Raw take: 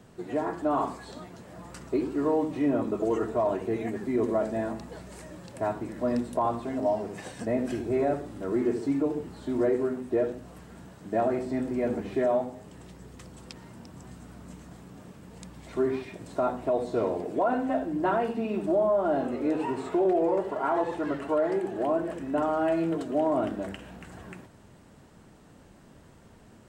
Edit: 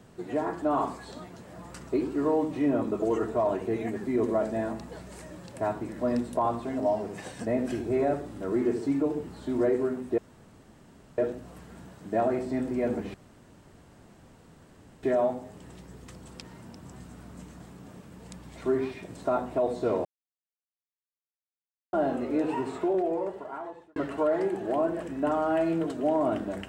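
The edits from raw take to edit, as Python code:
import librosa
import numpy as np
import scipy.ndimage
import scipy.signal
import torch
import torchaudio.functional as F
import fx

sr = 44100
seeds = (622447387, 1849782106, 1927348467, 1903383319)

y = fx.edit(x, sr, fx.insert_room_tone(at_s=10.18, length_s=1.0),
    fx.insert_room_tone(at_s=12.14, length_s=1.89),
    fx.silence(start_s=17.16, length_s=1.88),
    fx.fade_out_span(start_s=19.7, length_s=1.37), tone=tone)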